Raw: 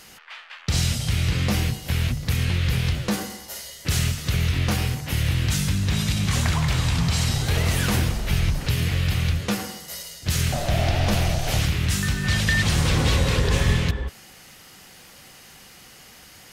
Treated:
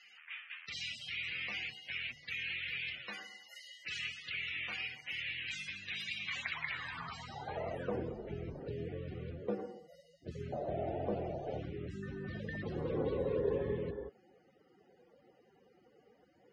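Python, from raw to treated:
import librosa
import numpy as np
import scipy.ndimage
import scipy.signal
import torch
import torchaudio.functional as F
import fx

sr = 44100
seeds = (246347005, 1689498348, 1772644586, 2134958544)

y = fx.spec_topn(x, sr, count=64)
y = fx.filter_sweep_bandpass(y, sr, from_hz=2400.0, to_hz=430.0, start_s=6.54, end_s=8.04, q=2.9)
y = y * 10.0 ** (-1.5 / 20.0)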